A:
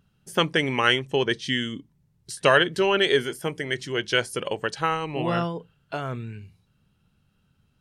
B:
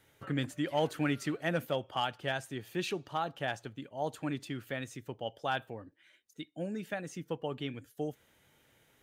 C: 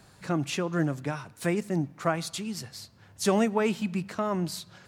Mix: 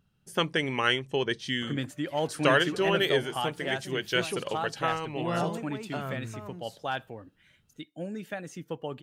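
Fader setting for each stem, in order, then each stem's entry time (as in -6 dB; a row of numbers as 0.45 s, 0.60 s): -5.0 dB, +1.0 dB, -15.5 dB; 0.00 s, 1.40 s, 2.15 s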